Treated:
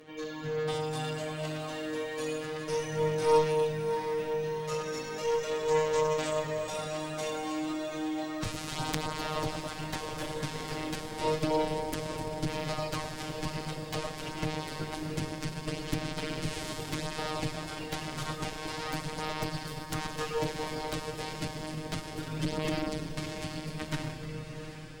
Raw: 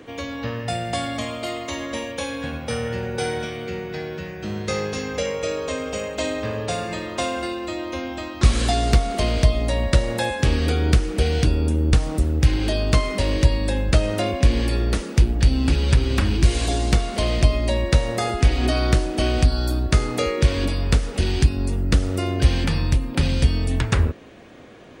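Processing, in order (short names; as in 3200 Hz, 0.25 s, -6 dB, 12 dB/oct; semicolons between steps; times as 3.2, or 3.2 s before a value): tube stage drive 6 dB, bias 0.65; Schroeder reverb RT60 2.9 s, DRR 0.5 dB; robotiser 155 Hz; chorus voices 2, 0.33 Hz, delay 11 ms, depth 4.6 ms; added harmonics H 4 -8 dB, 8 -28 dB, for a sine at -5.5 dBFS; on a send: diffused feedback echo 0.74 s, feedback 59%, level -11 dB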